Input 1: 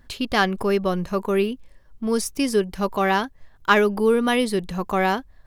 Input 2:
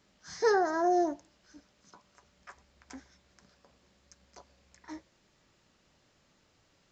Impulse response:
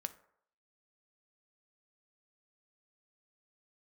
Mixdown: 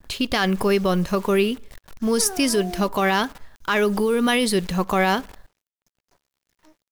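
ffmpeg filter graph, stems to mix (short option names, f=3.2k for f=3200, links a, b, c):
-filter_complex "[0:a]alimiter=limit=-16dB:level=0:latency=1:release=52,adynamicequalizer=threshold=0.0141:dfrequency=1800:dqfactor=0.7:tfrequency=1800:tqfactor=0.7:attack=5:release=100:ratio=0.375:range=2.5:mode=boostabove:tftype=highshelf,volume=0.5dB,asplit=2[a][b];[b]volume=-5dB[c];[1:a]acontrast=72,adelay=1750,volume=-17.5dB,asplit=2[d][e];[e]volume=-6.5dB[f];[2:a]atrim=start_sample=2205[g];[c][f]amix=inputs=2:normalize=0[h];[h][g]afir=irnorm=-1:irlink=0[i];[a][d][i]amix=inputs=3:normalize=0,acrusher=bits=8:dc=4:mix=0:aa=0.000001"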